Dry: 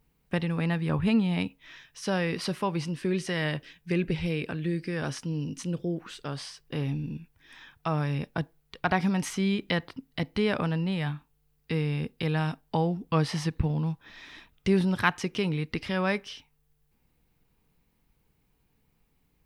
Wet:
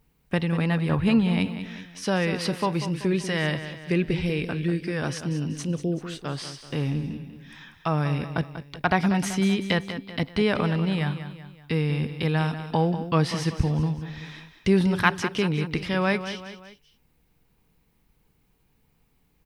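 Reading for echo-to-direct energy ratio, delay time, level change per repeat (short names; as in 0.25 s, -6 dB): -10.0 dB, 0.191 s, -6.5 dB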